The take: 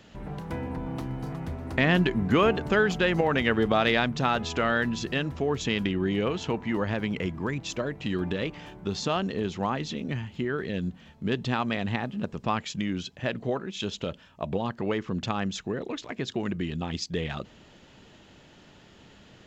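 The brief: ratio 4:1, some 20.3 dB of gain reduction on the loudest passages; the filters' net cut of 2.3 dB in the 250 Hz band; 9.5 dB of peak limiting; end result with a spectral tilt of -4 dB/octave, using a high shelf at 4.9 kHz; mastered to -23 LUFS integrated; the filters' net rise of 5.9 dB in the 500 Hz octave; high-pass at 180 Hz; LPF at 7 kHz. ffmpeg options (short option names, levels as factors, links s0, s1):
-af "highpass=180,lowpass=7000,equalizer=f=250:t=o:g=-4,equalizer=f=500:t=o:g=8.5,highshelf=f=4900:g=-4,acompressor=threshold=0.01:ratio=4,volume=10.6,alimiter=limit=0.299:level=0:latency=1"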